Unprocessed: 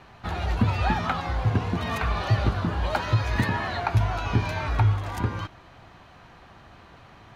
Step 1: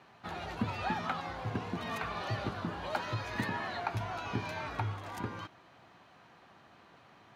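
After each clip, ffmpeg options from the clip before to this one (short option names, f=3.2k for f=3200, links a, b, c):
-af "highpass=160,volume=-8dB"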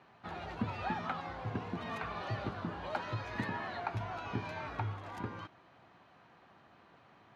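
-af "aemphasis=mode=reproduction:type=50kf,volume=-2dB"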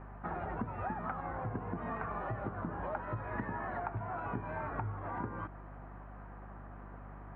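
-af "lowpass=f=1.7k:w=0.5412,lowpass=f=1.7k:w=1.3066,acompressor=threshold=-44dB:ratio=6,aeval=exprs='val(0)+0.00141*(sin(2*PI*50*n/s)+sin(2*PI*2*50*n/s)/2+sin(2*PI*3*50*n/s)/3+sin(2*PI*4*50*n/s)/4+sin(2*PI*5*50*n/s)/5)':c=same,volume=8.5dB"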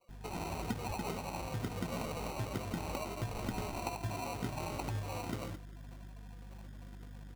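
-filter_complex "[0:a]acrossover=split=810[a][b];[a]adelay=90[c];[c][b]amix=inputs=2:normalize=0,afftdn=nr=24:nf=-47,acrusher=samples=26:mix=1:aa=0.000001,volume=1dB"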